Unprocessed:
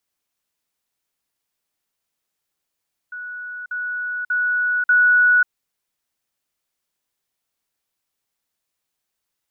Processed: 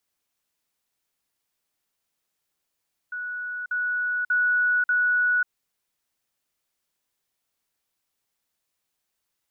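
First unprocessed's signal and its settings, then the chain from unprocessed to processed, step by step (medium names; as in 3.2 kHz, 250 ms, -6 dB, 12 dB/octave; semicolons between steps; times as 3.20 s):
level ladder 1.47 kHz -29 dBFS, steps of 6 dB, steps 4, 0.54 s 0.05 s
peak limiter -18.5 dBFS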